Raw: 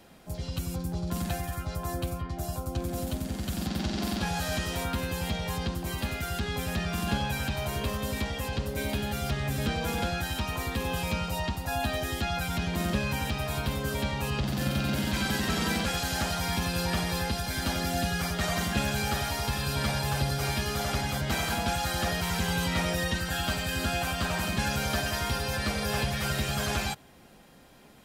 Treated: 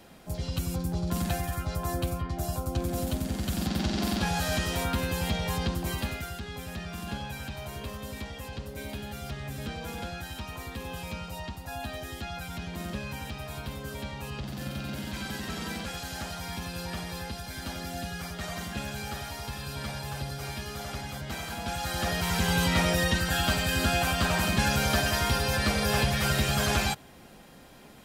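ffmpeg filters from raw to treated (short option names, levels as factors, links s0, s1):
-af "volume=4.22,afade=t=out:st=5.87:d=0.51:silence=0.354813,afade=t=in:st=21.55:d=1.06:silence=0.298538"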